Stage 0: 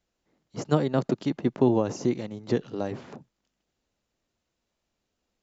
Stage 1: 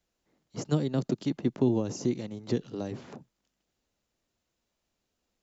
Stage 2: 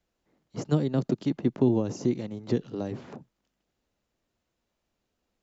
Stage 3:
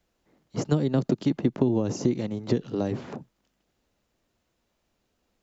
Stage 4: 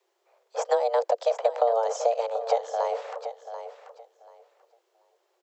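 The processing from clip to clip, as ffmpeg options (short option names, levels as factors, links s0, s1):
-filter_complex "[0:a]highshelf=f=5800:g=4,acrossover=split=390|3000[s0][s1][s2];[s1]acompressor=threshold=0.00708:ratio=2[s3];[s0][s3][s2]amix=inputs=3:normalize=0,volume=0.841"
-af "highshelf=f=3800:g=-8,volume=1.33"
-af "acompressor=threshold=0.0631:ratio=5,volume=1.88"
-af "afreqshift=340,aecho=1:1:736|1472|2208:0.282|0.0535|0.0102"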